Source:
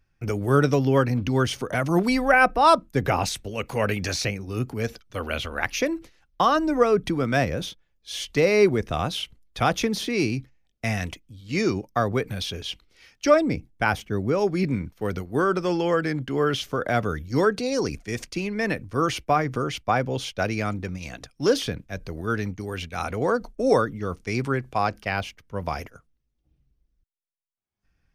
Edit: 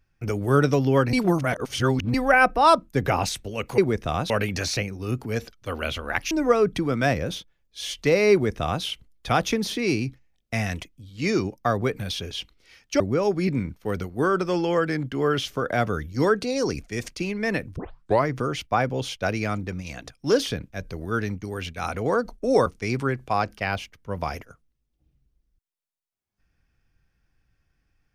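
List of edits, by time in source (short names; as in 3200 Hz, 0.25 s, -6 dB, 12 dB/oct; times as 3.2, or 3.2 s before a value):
1.13–2.14 reverse
5.79–6.62 cut
8.63–9.15 copy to 3.78
13.31–14.16 cut
18.92 tape start 0.51 s
23.82–24.11 cut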